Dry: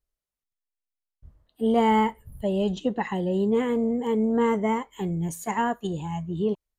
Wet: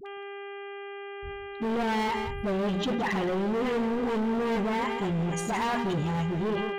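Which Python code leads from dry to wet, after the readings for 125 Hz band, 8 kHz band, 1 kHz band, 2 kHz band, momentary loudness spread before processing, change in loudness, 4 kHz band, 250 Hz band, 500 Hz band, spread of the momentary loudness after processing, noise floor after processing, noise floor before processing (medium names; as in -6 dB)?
-0.5 dB, no reading, -3.0 dB, +3.0 dB, 9 LU, -3.0 dB, +3.0 dB, -3.5 dB, -3.5 dB, 12 LU, -40 dBFS, under -85 dBFS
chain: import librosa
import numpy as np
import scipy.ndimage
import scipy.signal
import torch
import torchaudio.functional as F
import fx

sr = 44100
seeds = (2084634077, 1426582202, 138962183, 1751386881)

p1 = scipy.signal.sosfilt(scipy.signal.butter(2, 4900.0, 'lowpass', fs=sr, output='sos'), x)
p2 = fx.hum_notches(p1, sr, base_hz=60, count=4)
p3 = fx.over_compress(p2, sr, threshold_db=-28.0, ratio=-1.0)
p4 = p2 + (p3 * librosa.db_to_amplitude(-2.0))
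p5 = fx.dmg_buzz(p4, sr, base_hz=400.0, harmonics=8, level_db=-38.0, tilt_db=-5, odd_only=False)
p6 = fx.dispersion(p5, sr, late='highs', ms=61.0, hz=690.0)
p7 = np.clip(p6, -10.0 ** (-24.0 / 20.0), 10.0 ** (-24.0 / 20.0))
p8 = p7 + 10.0 ** (-12.0 / 20.0) * np.pad(p7, (int(168 * sr / 1000.0), 0))[:len(p7)]
p9 = fx.sustainer(p8, sr, db_per_s=25.0)
y = p9 * librosa.db_to_amplitude(-2.0)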